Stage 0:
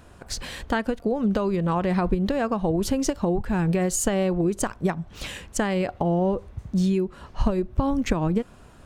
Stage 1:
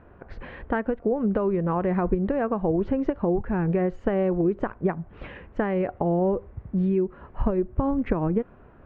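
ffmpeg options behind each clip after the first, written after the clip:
-af "lowpass=f=2.1k:w=0.5412,lowpass=f=2.1k:w=1.3066,equalizer=f=410:t=o:w=0.98:g=4.5,volume=-2.5dB"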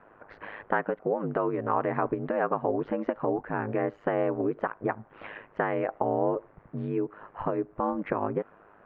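-af "bandpass=f=1.2k:t=q:w=0.71:csg=0,aeval=exprs='val(0)*sin(2*PI*52*n/s)':c=same,volume=5.5dB"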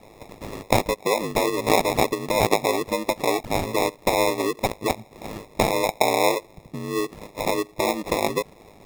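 -filter_complex "[0:a]acrossover=split=370[a][b];[a]acompressor=threshold=-41dB:ratio=6[c];[b]acrusher=samples=29:mix=1:aa=0.000001[d];[c][d]amix=inputs=2:normalize=0,volume=8dB"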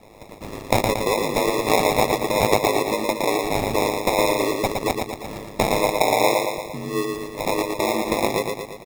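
-af "aecho=1:1:115|230|345|460|575|690|805|920:0.631|0.353|0.198|0.111|0.0621|0.0347|0.0195|0.0109"

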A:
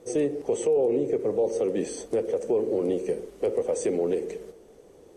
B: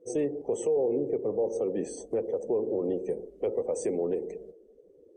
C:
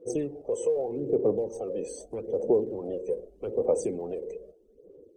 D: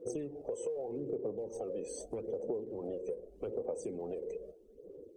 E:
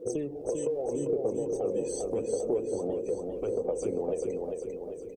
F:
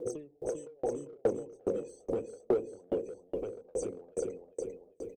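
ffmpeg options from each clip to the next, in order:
-af "afftdn=nr=22:nf=-46,adynamicequalizer=threshold=0.00251:dfrequency=3000:dqfactor=1.1:tfrequency=3000:tqfactor=1.1:attack=5:release=100:ratio=0.375:range=3:mode=cutabove:tftype=bell,volume=-3.5dB"
-af "equalizer=f=1.9k:w=4:g=-10,aphaser=in_gain=1:out_gain=1:delay=2:decay=0.65:speed=0.81:type=sinusoidal,volume=-2.5dB"
-af "acompressor=threshold=-38dB:ratio=4,volume=1dB"
-af "aecho=1:1:397|794|1191|1588|1985|2382:0.631|0.315|0.158|0.0789|0.0394|0.0197,volume=6.5dB"
-filter_complex "[0:a]asplit=2[a][b];[b]asoftclip=type=hard:threshold=-26.5dB,volume=-3dB[c];[a][c]amix=inputs=2:normalize=0,aeval=exprs='val(0)*pow(10,-37*if(lt(mod(2.4*n/s,1),2*abs(2.4)/1000),1-mod(2.4*n/s,1)/(2*abs(2.4)/1000),(mod(2.4*n/s,1)-2*abs(2.4)/1000)/(1-2*abs(2.4)/1000))/20)':c=same"

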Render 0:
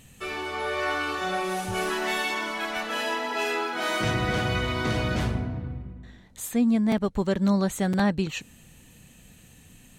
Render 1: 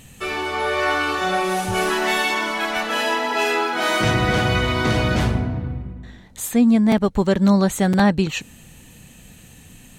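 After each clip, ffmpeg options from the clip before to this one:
-af "equalizer=f=840:t=o:w=0.22:g=2,volume=7dB"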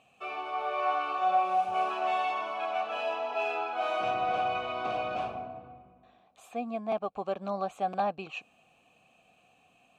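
-filter_complex "[0:a]asplit=3[a][b][c];[a]bandpass=f=730:t=q:w=8,volume=0dB[d];[b]bandpass=f=1.09k:t=q:w=8,volume=-6dB[e];[c]bandpass=f=2.44k:t=q:w=8,volume=-9dB[f];[d][e][f]amix=inputs=3:normalize=0"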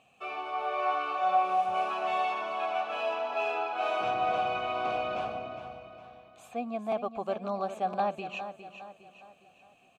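-af "aecho=1:1:409|818|1227|1636|2045:0.299|0.128|0.0552|0.0237|0.0102"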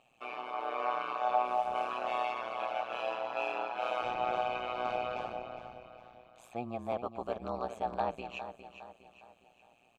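-af "tremolo=f=120:d=1"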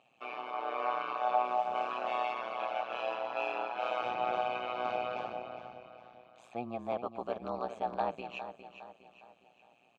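-af "highpass=120,lowpass=5.8k"

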